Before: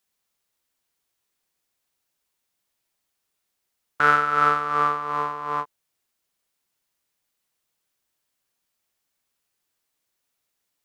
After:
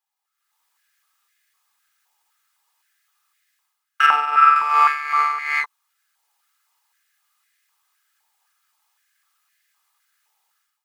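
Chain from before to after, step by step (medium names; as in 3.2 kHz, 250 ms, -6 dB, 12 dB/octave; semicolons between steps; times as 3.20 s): comb filter that takes the minimum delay 2.4 ms; 4.06–4.56 s: treble shelf 3.4 kHz -10.5 dB; level rider gain up to 16 dB; step-sequenced high-pass 3.9 Hz 880–1800 Hz; trim -7 dB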